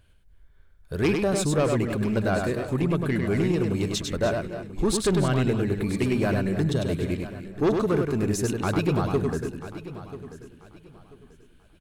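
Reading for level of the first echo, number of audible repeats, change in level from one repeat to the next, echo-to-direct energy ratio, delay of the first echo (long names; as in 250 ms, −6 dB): −4.5 dB, 7, repeats not evenly spaced, −3.0 dB, 100 ms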